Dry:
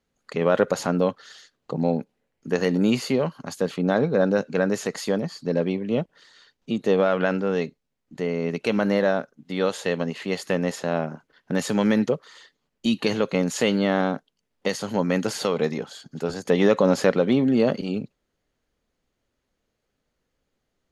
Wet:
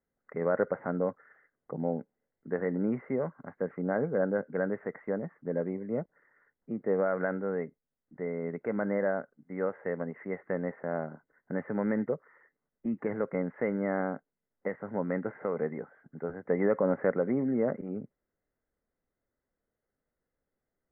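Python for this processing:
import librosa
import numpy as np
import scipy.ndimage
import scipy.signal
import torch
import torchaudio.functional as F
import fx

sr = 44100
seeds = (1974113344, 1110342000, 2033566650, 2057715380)

y = scipy.signal.sosfilt(scipy.signal.cheby1(6, 3, 2100.0, 'lowpass', fs=sr, output='sos'), x)
y = y * 10.0 ** (-7.5 / 20.0)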